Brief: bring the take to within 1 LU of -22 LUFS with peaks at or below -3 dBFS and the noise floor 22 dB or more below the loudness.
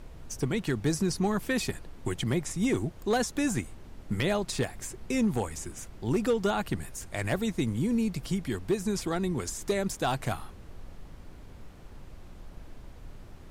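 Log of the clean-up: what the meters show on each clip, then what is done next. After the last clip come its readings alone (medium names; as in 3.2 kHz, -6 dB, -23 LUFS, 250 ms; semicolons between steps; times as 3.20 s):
clipped samples 0.4%; clipping level -19.5 dBFS; noise floor -48 dBFS; noise floor target -53 dBFS; loudness -30.5 LUFS; peak level -19.5 dBFS; loudness target -22.0 LUFS
-> clip repair -19.5 dBFS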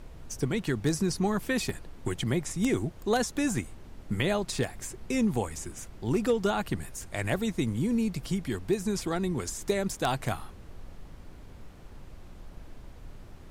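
clipped samples 0.0%; noise floor -48 dBFS; noise floor target -53 dBFS
-> noise print and reduce 6 dB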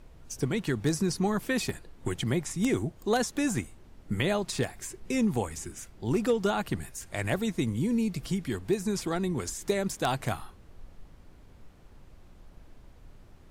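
noise floor -54 dBFS; loudness -30.5 LUFS; peak level -10.5 dBFS; loudness target -22.0 LUFS
-> trim +8.5 dB; peak limiter -3 dBFS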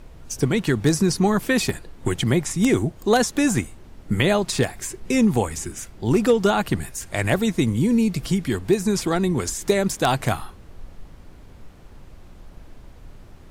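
loudness -22.0 LUFS; peak level -3.0 dBFS; noise floor -45 dBFS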